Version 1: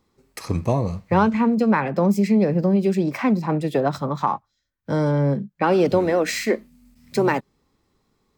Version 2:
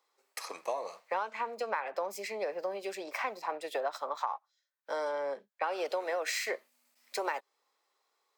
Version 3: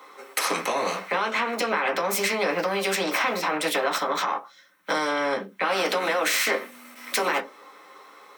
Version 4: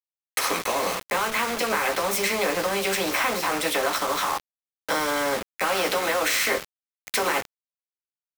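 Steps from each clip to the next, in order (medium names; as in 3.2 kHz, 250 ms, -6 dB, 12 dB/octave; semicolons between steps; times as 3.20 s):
high-pass 560 Hz 24 dB/octave; compression 6:1, threshold -25 dBFS, peak gain reduction 10 dB; trim -4.5 dB
peak limiter -29.5 dBFS, peak gain reduction 10.5 dB; reverberation RT60 0.15 s, pre-delay 3 ms, DRR 0.5 dB; spectrum-flattening compressor 2:1; trim +4 dB
bit crusher 5-bit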